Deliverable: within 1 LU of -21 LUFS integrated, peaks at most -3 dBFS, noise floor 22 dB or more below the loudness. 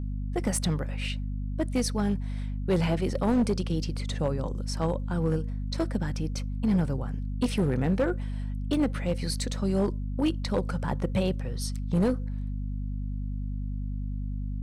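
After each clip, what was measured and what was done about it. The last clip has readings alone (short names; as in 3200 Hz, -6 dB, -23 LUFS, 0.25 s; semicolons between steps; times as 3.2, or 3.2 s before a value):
clipped 1.1%; flat tops at -19.0 dBFS; hum 50 Hz; harmonics up to 250 Hz; hum level -29 dBFS; loudness -29.5 LUFS; peak -19.0 dBFS; loudness target -21.0 LUFS
-> clip repair -19 dBFS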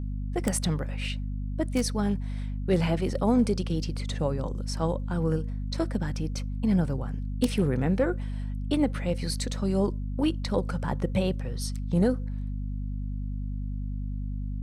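clipped 0.0%; hum 50 Hz; harmonics up to 250 Hz; hum level -29 dBFS
-> notches 50/100/150/200/250 Hz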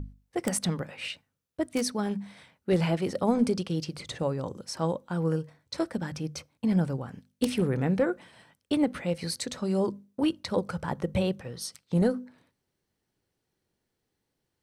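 hum none; loudness -30.0 LUFS; peak -10.5 dBFS; loudness target -21.0 LUFS
-> gain +9 dB; limiter -3 dBFS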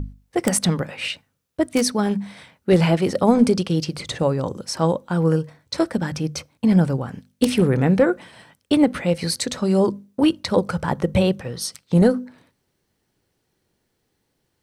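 loudness -21.0 LUFS; peak -3.0 dBFS; noise floor -73 dBFS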